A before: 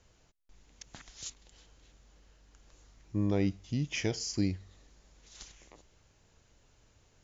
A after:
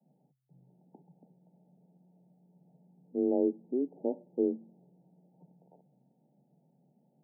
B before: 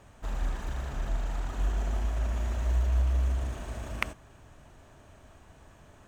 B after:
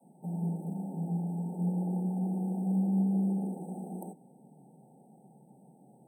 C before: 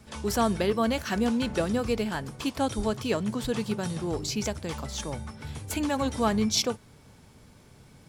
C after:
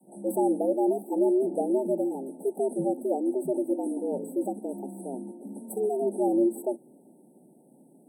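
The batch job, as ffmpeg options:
-af "adynamicequalizer=threshold=0.00891:dfrequency=230:dqfactor=0.97:tfrequency=230:tqfactor=0.97:attack=5:release=100:ratio=0.375:range=3.5:mode=boostabove:tftype=bell,afreqshift=130,afftfilt=real='re*(1-between(b*sr/4096,920,7900))':imag='im*(1-between(b*sr/4096,920,7900))':win_size=4096:overlap=0.75,volume=-3.5dB"

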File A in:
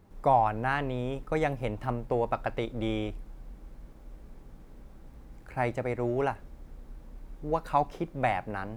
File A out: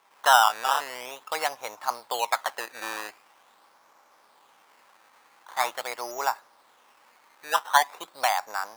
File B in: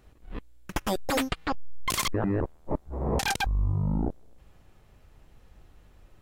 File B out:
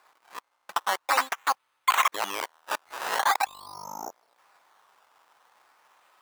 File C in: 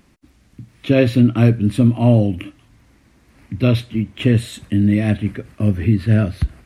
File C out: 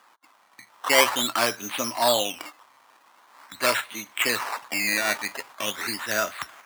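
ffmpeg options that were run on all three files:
-af "acrusher=samples=14:mix=1:aa=0.000001:lfo=1:lforange=14:lforate=0.44,highpass=f=990:t=q:w=2.2,volume=3dB"

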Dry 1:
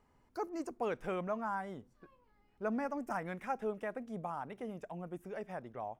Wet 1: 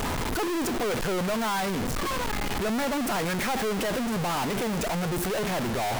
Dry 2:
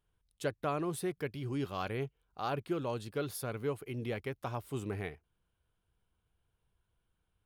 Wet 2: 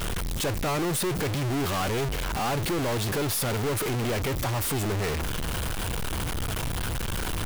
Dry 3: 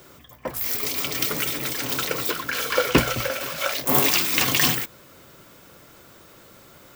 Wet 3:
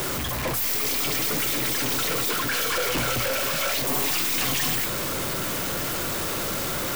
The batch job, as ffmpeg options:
-af "aeval=exprs='val(0)+0.5*0.0668*sgn(val(0))':c=same,aeval=exprs='(tanh(20*val(0)+0.25)-tanh(0.25))/20':c=same,volume=2.5dB"

